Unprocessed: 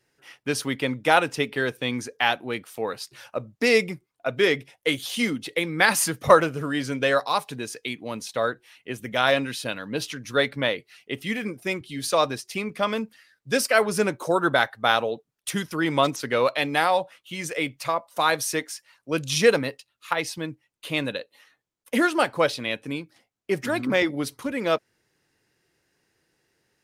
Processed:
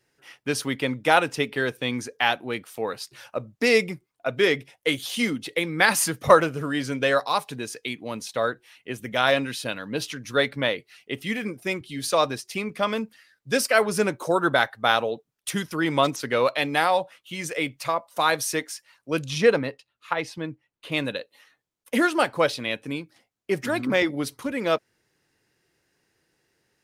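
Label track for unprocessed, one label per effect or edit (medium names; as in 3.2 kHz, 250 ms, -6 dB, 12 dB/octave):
19.260000	20.920000	low-pass 2.5 kHz 6 dB/octave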